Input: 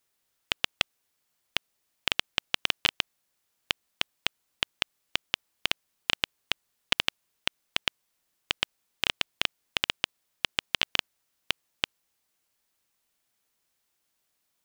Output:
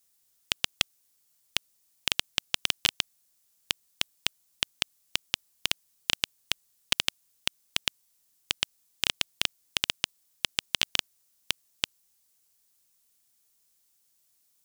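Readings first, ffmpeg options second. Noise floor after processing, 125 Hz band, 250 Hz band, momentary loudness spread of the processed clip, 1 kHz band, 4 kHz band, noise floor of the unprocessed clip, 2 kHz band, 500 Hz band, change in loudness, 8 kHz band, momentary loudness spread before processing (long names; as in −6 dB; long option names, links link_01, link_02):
−70 dBFS, +0.5 dB, −1.5 dB, 6 LU, −4.0 dB, +0.5 dB, −77 dBFS, −2.0 dB, −3.5 dB, 0.0 dB, +7.5 dB, 6 LU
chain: -af "bass=frequency=250:gain=5,treble=frequency=4000:gain=13,volume=-4dB"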